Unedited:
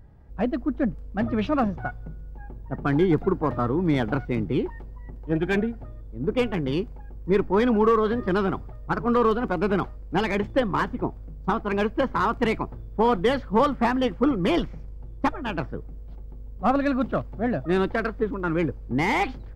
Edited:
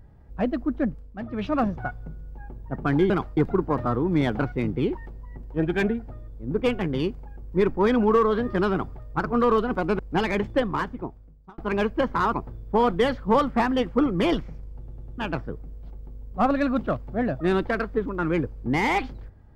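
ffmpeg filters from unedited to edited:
-filter_complex "[0:a]asplit=12[a][b][c][d][e][f][g][h][i][j][k][l];[a]atrim=end=1.13,asetpts=PTS-STARTPTS,afade=t=out:st=0.71:d=0.42:c=qsin:silence=0.354813[m];[b]atrim=start=1.13:end=1.29,asetpts=PTS-STARTPTS,volume=-9dB[n];[c]atrim=start=1.29:end=3.102,asetpts=PTS-STARTPTS,afade=t=in:d=0.42:c=qsin:silence=0.354813[o];[d]atrim=start=9.718:end=9.992[p];[e]atrim=start=3.098:end=9.722[q];[f]atrim=start=9.988:end=11.58,asetpts=PTS-STARTPTS,afade=t=out:st=0.532:d=1.06[r];[g]atrim=start=11.58:end=12.332,asetpts=PTS-STARTPTS,afade=t=in:d=0.004:c=hsin[s];[h]atrim=start=12.578:end=15.132[t];[i]atrim=start=15.028:end=15.132[u];[j]atrim=start=15.028:end=15.132[v];[k]atrim=start=15.028:end=15.132[w];[l]atrim=start=15.428[x];[m][n][o]concat=n=3:v=0:a=1[y];[y][p]acrossfade=d=0.004:c1=hsin:c2=hsin[z];[z][q]acrossfade=d=0.004:c1=hsin:c2=hsin[aa];[r][s]concat=n=2:v=0:a=1[ab];[aa][ab]acrossfade=d=0.004:c1=hsin:c2=hsin[ac];[ac][t]acrossfade=d=0.004:c1=hsin:c2=hsin[ad];[ad][u]acrossfade=d=0.004:c1=hsin:c2=hsin[ae];[ae][v]acrossfade=d=0.004:c1=hsin:c2=hsin[af];[af][w]acrossfade=d=0.004:c1=hsin:c2=hsin[ag];[ag][x]acrossfade=d=0.004:c1=hsin:c2=hsin"

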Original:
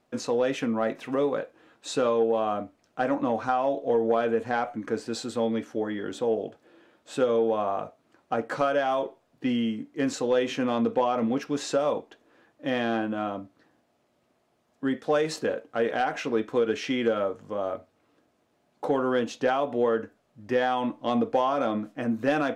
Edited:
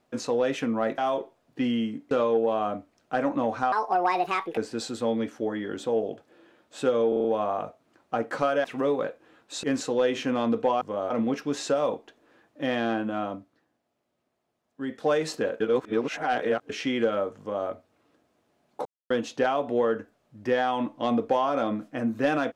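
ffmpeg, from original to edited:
-filter_complex "[0:a]asplit=19[a][b][c][d][e][f][g][h][i][j][k][l][m][n][o][p][q][r][s];[a]atrim=end=0.982[t];[b]atrim=start=8.828:end=9.962[u];[c]atrim=start=1.968:end=3.584[v];[d]atrim=start=3.58:end=4.92,asetpts=PTS-STARTPTS,asetrate=69237,aresample=44100,atrim=end_sample=37639,asetpts=PTS-STARTPTS[w];[e]atrim=start=4.916:end=7.472[x];[f]atrim=start=7.428:end=7.472[y];[g]atrim=start=7.428:end=7.472[z];[h]atrim=start=7.428:end=7.472[aa];[i]atrim=start=7.428:end=8.832[ab];[j]atrim=start=0.978:end=1.972[ac];[k]atrim=start=9.958:end=11.142[ad];[l]atrim=start=17.428:end=17.722[ae];[m]atrim=start=11.138:end=13.72,asetpts=PTS-STARTPTS,afade=t=out:st=2.232:d=0.35:c=qua:silence=0.375837[af];[n]atrim=start=13.72:end=14.72,asetpts=PTS-STARTPTS,volume=-8.5dB[ag];[o]atrim=start=14.72:end=15.642,asetpts=PTS-STARTPTS,afade=t=in:d=0.35:c=qua:silence=0.375837[ah];[p]atrim=start=15.638:end=16.732,asetpts=PTS-STARTPTS,areverse[ai];[q]atrim=start=16.728:end=18.89,asetpts=PTS-STARTPTS,afade=t=out:st=2.158:d=0.004:c=hsin[aj];[r]atrim=start=18.89:end=19.14,asetpts=PTS-STARTPTS,volume=0[ak];[s]atrim=start=19.14,asetpts=PTS-STARTPTS,afade=t=in:d=0.004:c=hsin[al];[t][u]acrossfade=d=0.004:c1=hsin:c2=hsin[am];[am][v]acrossfade=d=0.004:c1=hsin:c2=hsin[an];[an][w]acrossfade=d=0.004:c1=hsin:c2=hsin[ao];[ao][x]acrossfade=d=0.004:c1=hsin:c2=hsin[ap];[ap][y]acrossfade=d=0.004:c1=hsin:c2=hsin[aq];[aq][z]acrossfade=d=0.004:c1=hsin:c2=hsin[ar];[ar][aa]acrossfade=d=0.004:c1=hsin:c2=hsin[as];[as][ab]acrossfade=d=0.004:c1=hsin:c2=hsin[at];[at][ac]acrossfade=d=0.004:c1=hsin:c2=hsin[au];[au][ad]acrossfade=d=0.004:c1=hsin:c2=hsin[av];[av][ae]acrossfade=d=0.004:c1=hsin:c2=hsin[aw];[af][ag][ah]concat=n=3:v=0:a=1[ax];[aw][ax]acrossfade=d=0.004:c1=hsin:c2=hsin[ay];[ay][ai]acrossfade=d=0.004:c1=hsin:c2=hsin[az];[aj][ak][al]concat=n=3:v=0:a=1[ba];[az][ba]acrossfade=d=0.004:c1=hsin:c2=hsin"

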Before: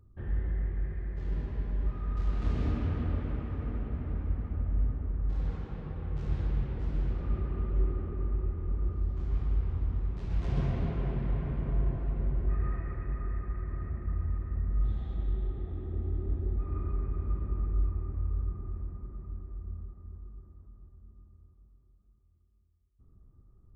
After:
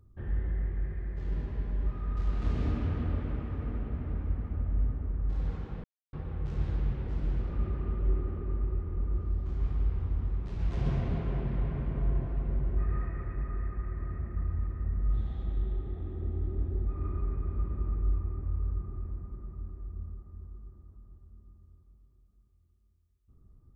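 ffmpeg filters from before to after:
-filter_complex "[0:a]asplit=2[a][b];[a]atrim=end=5.84,asetpts=PTS-STARTPTS,afade=t=out:st=5.836:d=0.004:c=hsin,apad=pad_dur=0.29[c];[b]atrim=start=5.84,asetpts=PTS-STARTPTS,afade=t=in:d=0.004:c=hsin[d];[c][d]concat=n=2:v=0:a=1"

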